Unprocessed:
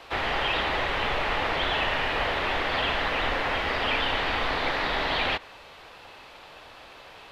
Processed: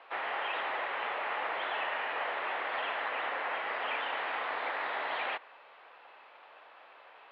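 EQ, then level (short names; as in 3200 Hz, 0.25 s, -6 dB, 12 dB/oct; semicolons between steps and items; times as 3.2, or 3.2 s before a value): BPF 620–2600 Hz; air absorption 210 m; -4.0 dB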